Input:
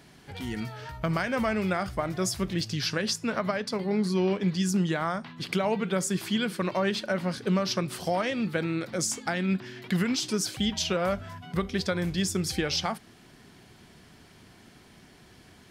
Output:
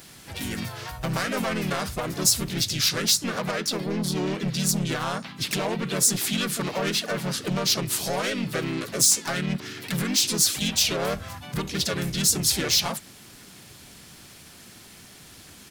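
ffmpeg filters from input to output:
ffmpeg -i in.wav -filter_complex "[0:a]asoftclip=type=tanh:threshold=-25.5dB,asplit=3[link_01][link_02][link_03];[link_02]asetrate=35002,aresample=44100,atempo=1.25992,volume=-2dB[link_04];[link_03]asetrate=52444,aresample=44100,atempo=0.840896,volume=-7dB[link_05];[link_01][link_04][link_05]amix=inputs=3:normalize=0,crystalizer=i=3.5:c=0" out.wav

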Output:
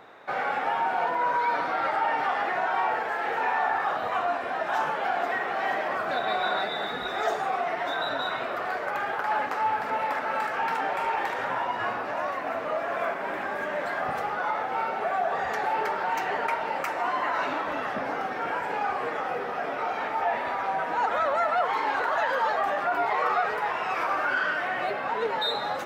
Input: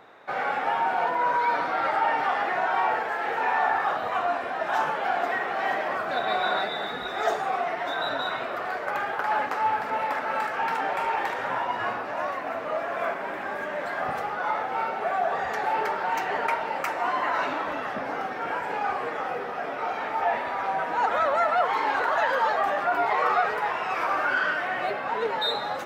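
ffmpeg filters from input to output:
ffmpeg -i in.wav -filter_complex "[0:a]asplit=2[link_01][link_02];[link_02]alimiter=limit=-23dB:level=0:latency=1:release=250,volume=1dB[link_03];[link_01][link_03]amix=inputs=2:normalize=0,volume=-5dB" out.wav

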